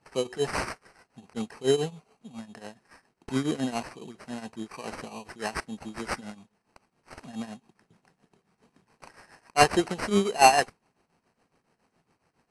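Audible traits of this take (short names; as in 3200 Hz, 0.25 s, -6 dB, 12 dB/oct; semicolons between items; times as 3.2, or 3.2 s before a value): aliases and images of a low sample rate 3500 Hz, jitter 0%; tremolo triangle 7.2 Hz, depth 85%; AAC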